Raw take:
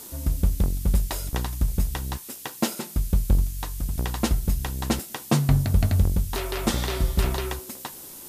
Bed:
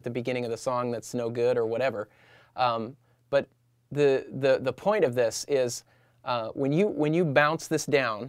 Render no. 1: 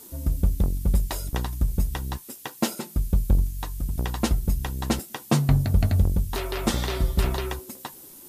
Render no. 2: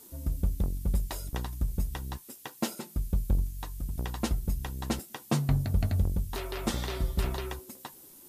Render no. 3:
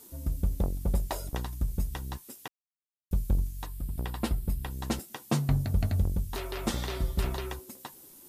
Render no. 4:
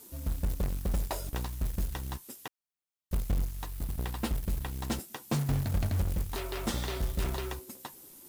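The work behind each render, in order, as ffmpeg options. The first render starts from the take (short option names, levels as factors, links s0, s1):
-af "afftdn=nr=7:nf=-42"
-af "volume=0.473"
-filter_complex "[0:a]asettb=1/sr,asplit=3[s0][s1][s2];[s0]atrim=end=0.504[s3];[s1]atrim=start=0.5:end=1.35,asetpts=PTS-STARTPTS,afade=t=in:d=0.004:c=qsin,afade=t=out:st=0.846:d=0.004:c=qsin,equalizer=f=660:t=o:w=1.7:g=8.5[s4];[s2]atrim=start=1.346[s5];[s3][s4]acrossfade=d=0.004:c1=hsin:c2=qsin[s6];[s6][s5]acrossfade=d=0.004:c1=qsin:c2=hsin,asettb=1/sr,asplit=3[s7][s8][s9];[s7]atrim=end=3.664[s10];[s8]atrim=start=3.66:end=4.71,asetpts=PTS-STARTPTS,afade=t=in:d=0.004:c=qsin,afade=t=out:st=1.046:d=0.004:c=qsin,equalizer=f=6300:t=o:w=0.39:g=-10.5[s11];[s9]atrim=start=4.706[s12];[s10][s11]acrossfade=d=0.004:c1=hsin:c2=qsin[s13];[s13][s12]acrossfade=d=0.004:c1=qsin:c2=hsin,asplit=3[s14][s15][s16];[s14]atrim=end=2.48,asetpts=PTS-STARTPTS,afade=t=out:st=2.476:d=0.004:c=hsin[s17];[s15]atrim=start=2.48:end=3.11,asetpts=PTS-STARTPTS,volume=0[s18];[s16]atrim=start=3.11,asetpts=PTS-STARTPTS,afade=t=in:d=0.004:c=hsin[s19];[s17][s18][s19]concat=n=3:v=0:a=1"
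-af "asoftclip=type=tanh:threshold=0.075,acrusher=bits=3:mode=log:mix=0:aa=0.000001"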